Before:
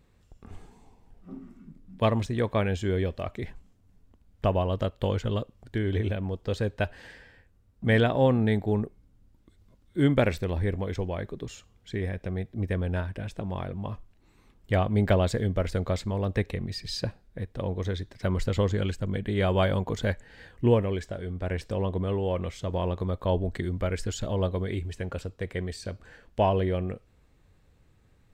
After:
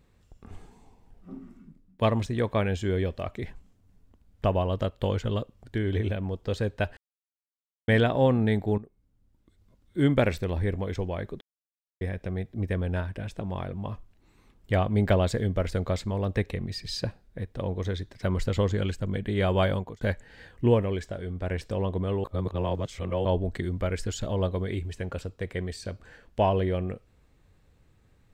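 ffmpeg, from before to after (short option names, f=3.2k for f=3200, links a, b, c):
-filter_complex "[0:a]asplit=10[a][b][c][d][e][f][g][h][i][j];[a]atrim=end=1.99,asetpts=PTS-STARTPTS,afade=t=out:st=1.56:d=0.43:silence=0.0668344[k];[b]atrim=start=1.99:end=6.97,asetpts=PTS-STARTPTS,afade=t=in:d=0.004:c=hsin:silence=0.0668344,afade=t=out:st=4.976:d=0.004:c=hsin[l];[c]atrim=start=6.97:end=7.88,asetpts=PTS-STARTPTS,volume=0[m];[d]atrim=start=7.88:end=8.78,asetpts=PTS-STARTPTS,afade=t=in:d=0.004:c=hsin,afade=t=out:st=0.896:d=0.004:c=hsin:silence=0.16788[n];[e]atrim=start=8.78:end=11.41,asetpts=PTS-STARTPTS,afade=t=in:d=1.31:silence=0.16788,afade=t=out:st=2.626:d=0.004:c=hsin[o];[f]atrim=start=11.41:end=12.01,asetpts=PTS-STARTPTS,volume=0[p];[g]atrim=start=12.01:end=20.01,asetpts=PTS-STARTPTS,afade=t=in:d=0.004:c=hsin,afade=t=out:st=7.69:d=0.31[q];[h]atrim=start=20.01:end=22.242,asetpts=PTS-STARTPTS,afade=t=in:d=0.004:c=hsin[r];[i]atrim=start=22.238:end=23.252,asetpts=PTS-STARTPTS,areverse[s];[j]atrim=start=23.248[t];[k][l][m][n][o][p][q][r]concat=n=8:v=0:a=1[u];[u][s]acrossfade=d=0.004:c1=hsin:c2=hsin[v];[v][t]acrossfade=d=0.004:c1=hsin:c2=hsin"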